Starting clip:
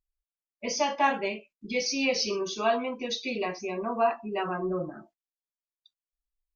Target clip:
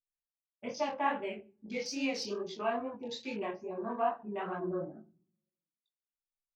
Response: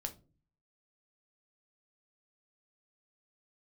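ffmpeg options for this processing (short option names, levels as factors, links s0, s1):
-filter_complex "[0:a]afwtdn=0.0126,flanger=delay=18:depth=7.5:speed=2.4,asettb=1/sr,asplit=3[s0][s1][s2];[s0]atrim=end=1.204[s3];[s1]atrim=start=1.2:end=1.99,asetpts=PTS-STARTPTS,afade=t=in:d=0.004:c=qsin,afade=t=out:st=0.786:d=0.004:c=qsin,equalizer=f=1200:t=o:w=0.99:g=-5.5[s4];[s2]atrim=start=1.986[s5];[s3][s4]acrossfade=d=0.004:c1=hsin:c2=qsin[s6];[s6][s5]acrossfade=d=0.004:c1=qsin:c2=hsin,asplit=2[s7][s8];[1:a]atrim=start_sample=2205,asetrate=29106,aresample=44100,lowpass=2500[s9];[s8][s9]afir=irnorm=-1:irlink=0,volume=0.422[s10];[s7][s10]amix=inputs=2:normalize=0,volume=0.501"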